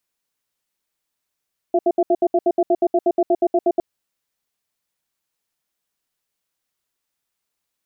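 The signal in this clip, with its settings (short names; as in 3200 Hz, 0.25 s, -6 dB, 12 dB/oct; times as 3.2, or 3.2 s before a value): cadence 355 Hz, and 678 Hz, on 0.05 s, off 0.07 s, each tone -15.5 dBFS 2.06 s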